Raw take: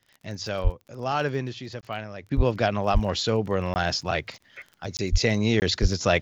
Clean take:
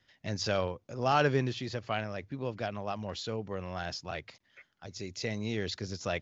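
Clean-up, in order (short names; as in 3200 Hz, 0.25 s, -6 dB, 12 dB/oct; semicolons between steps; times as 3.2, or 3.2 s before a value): de-click; de-plosive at 0.63/2.36/2.93/5.11/5.81; interpolate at 1.81/3.74/4.97/5.6, 19 ms; gain correction -12 dB, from 2.31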